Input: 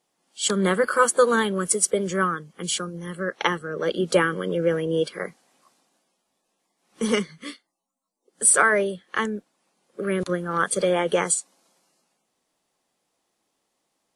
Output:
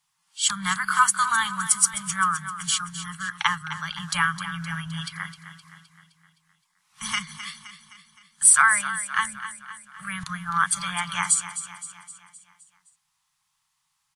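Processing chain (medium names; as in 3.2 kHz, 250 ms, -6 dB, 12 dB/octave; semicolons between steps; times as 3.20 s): elliptic band-stop 150–980 Hz, stop band 50 dB; on a send: feedback delay 259 ms, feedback 54%, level -12 dB; on the sum: trim +2.5 dB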